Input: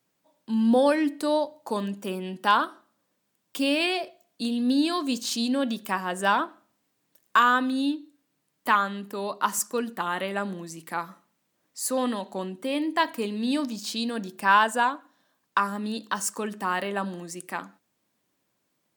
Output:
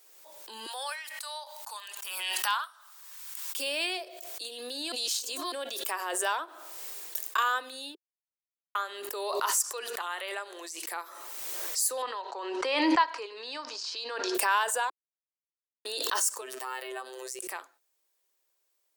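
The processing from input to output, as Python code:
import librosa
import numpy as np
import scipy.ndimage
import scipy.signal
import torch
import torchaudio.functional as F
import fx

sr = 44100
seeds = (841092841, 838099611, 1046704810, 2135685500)

y = fx.highpass(x, sr, hz=940.0, slope=24, at=(0.66, 3.58))
y = fx.weighting(y, sr, curve='A', at=(9.5, 10.87))
y = fx.cabinet(y, sr, low_hz=230.0, low_slope=12, high_hz=5300.0, hz=(330.0, 610.0, 990.0, 1400.0, 3500.0, 5000.0), db=(-3, -4, 8, 6, -6, 3), at=(12.02, 14.35))
y = fx.robotise(y, sr, hz=129.0, at=(16.41, 17.39))
y = fx.edit(y, sr, fx.reverse_span(start_s=4.92, length_s=0.6),
    fx.fade_out_to(start_s=6.26, length_s=1.12, floor_db=-13.5),
    fx.silence(start_s=7.95, length_s=0.8),
    fx.silence(start_s=14.9, length_s=0.95), tone=tone)
y = scipy.signal.sosfilt(scipy.signal.butter(8, 360.0, 'highpass', fs=sr, output='sos'), y)
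y = fx.high_shelf(y, sr, hz=3900.0, db=11.0)
y = fx.pre_swell(y, sr, db_per_s=29.0)
y = y * 10.0 ** (-8.5 / 20.0)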